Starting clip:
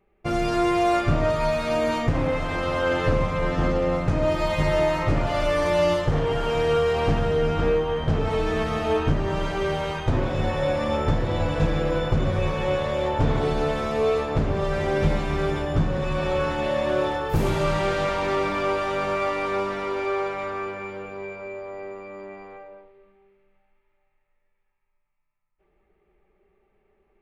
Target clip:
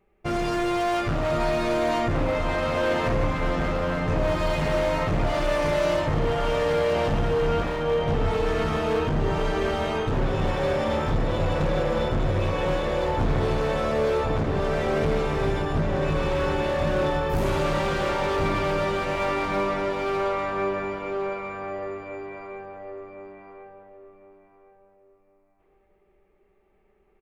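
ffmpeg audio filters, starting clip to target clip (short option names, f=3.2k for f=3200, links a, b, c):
-filter_complex "[0:a]volume=22dB,asoftclip=hard,volume=-22dB,asplit=2[a][b];[b]adelay=1060,lowpass=f=1.6k:p=1,volume=-3dB,asplit=2[c][d];[d]adelay=1060,lowpass=f=1.6k:p=1,volume=0.3,asplit=2[e][f];[f]adelay=1060,lowpass=f=1.6k:p=1,volume=0.3,asplit=2[g][h];[h]adelay=1060,lowpass=f=1.6k:p=1,volume=0.3[i];[a][c][e][g][i]amix=inputs=5:normalize=0"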